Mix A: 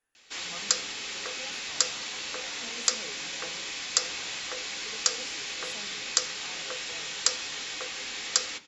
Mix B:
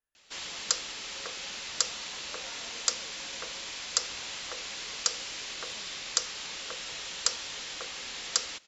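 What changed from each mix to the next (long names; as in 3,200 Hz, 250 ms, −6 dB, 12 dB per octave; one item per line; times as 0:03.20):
speech −7.0 dB
reverb: off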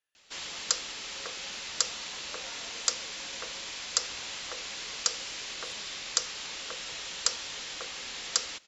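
speech: add meter weighting curve D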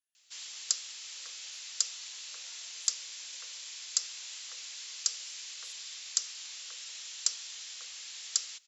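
master: add first difference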